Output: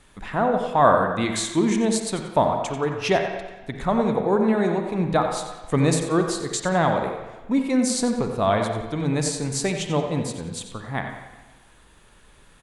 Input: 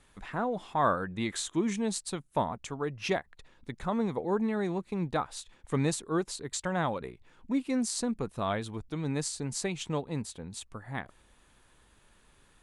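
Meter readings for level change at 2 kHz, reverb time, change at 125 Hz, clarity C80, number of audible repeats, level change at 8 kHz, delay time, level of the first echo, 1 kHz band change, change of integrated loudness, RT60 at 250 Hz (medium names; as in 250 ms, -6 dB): +9.0 dB, 1.2 s, +9.0 dB, 5.5 dB, 1, +8.0 dB, 90 ms, -11.0 dB, +10.5 dB, +9.5 dB, 1.1 s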